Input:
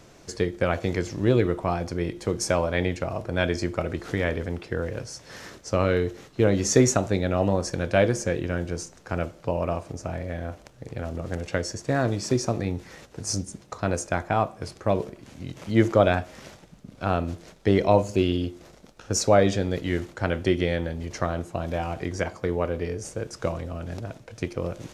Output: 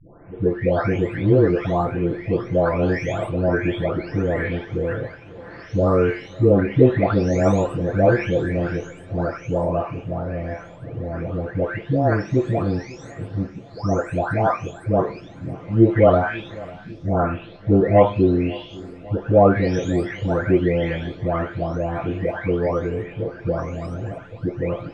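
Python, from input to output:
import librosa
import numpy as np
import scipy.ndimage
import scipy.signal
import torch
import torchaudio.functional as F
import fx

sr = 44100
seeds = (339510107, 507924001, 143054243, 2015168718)

y = fx.spec_delay(x, sr, highs='late', ms=822)
y = scipy.signal.sosfilt(scipy.signal.butter(2, 2100.0, 'lowpass', fs=sr, output='sos'), y)
y = fx.echo_feedback(y, sr, ms=548, feedback_pct=55, wet_db=-21.0)
y = y * 10.0 ** (7.0 / 20.0)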